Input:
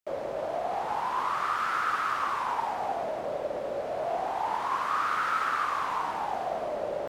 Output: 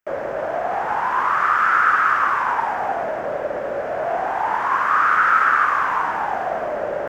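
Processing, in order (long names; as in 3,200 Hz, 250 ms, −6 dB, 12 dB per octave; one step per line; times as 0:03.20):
graphic EQ with 15 bands 1,600 Hz +10 dB, 4,000 Hz −10 dB, 10,000 Hz −11 dB
level +7 dB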